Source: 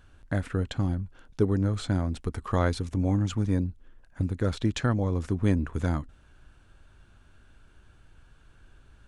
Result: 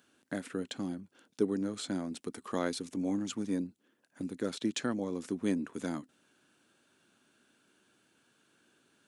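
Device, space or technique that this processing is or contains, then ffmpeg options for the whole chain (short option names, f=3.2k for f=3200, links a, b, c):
smiley-face EQ: -af "highpass=f=230:w=0.5412,highpass=f=230:w=1.3066,lowshelf=f=86:g=8,equalizer=f=1k:t=o:w=2.5:g=-7.5,highshelf=f=7.4k:g=5.5,volume=-1dB"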